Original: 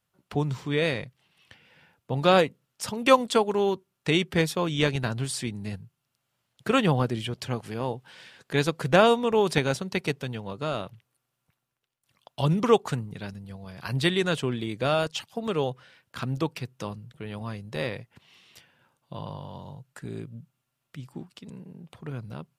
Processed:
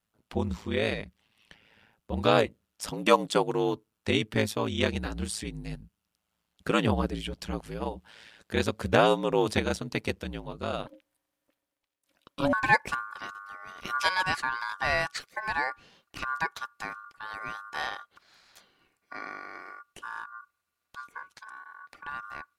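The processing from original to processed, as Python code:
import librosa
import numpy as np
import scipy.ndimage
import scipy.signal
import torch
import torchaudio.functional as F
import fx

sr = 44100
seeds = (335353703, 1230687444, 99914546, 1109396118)

y = fx.ring_mod(x, sr, carrier_hz=fx.steps((0.0, 55.0), (10.86, 420.0), (12.53, 1300.0)))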